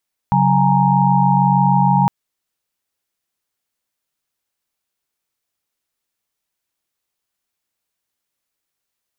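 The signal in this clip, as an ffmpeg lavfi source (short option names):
-f lavfi -i "aevalsrc='0.15*(sin(2*PI*138.59*t)+sin(2*PI*185*t)+sin(2*PI*830.61*t)+sin(2*PI*932.33*t))':d=1.76:s=44100"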